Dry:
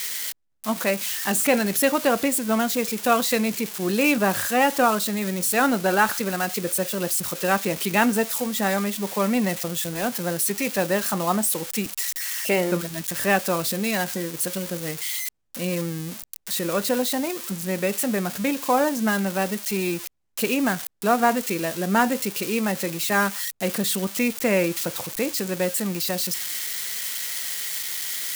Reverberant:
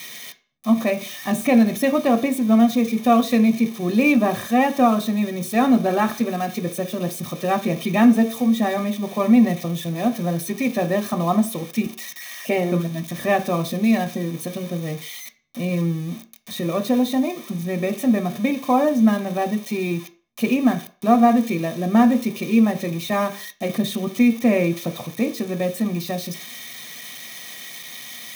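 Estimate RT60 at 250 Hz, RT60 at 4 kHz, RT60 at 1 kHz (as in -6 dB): 0.35 s, 0.40 s, 0.45 s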